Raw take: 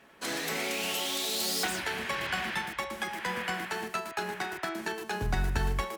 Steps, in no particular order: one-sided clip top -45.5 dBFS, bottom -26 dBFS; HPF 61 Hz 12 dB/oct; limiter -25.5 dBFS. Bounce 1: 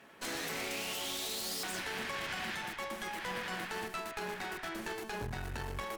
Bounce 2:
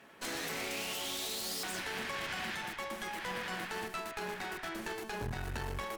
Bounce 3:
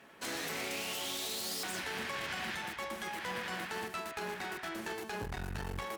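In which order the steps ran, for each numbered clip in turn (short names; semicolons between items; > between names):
limiter > HPF > one-sided clip; HPF > limiter > one-sided clip; limiter > one-sided clip > HPF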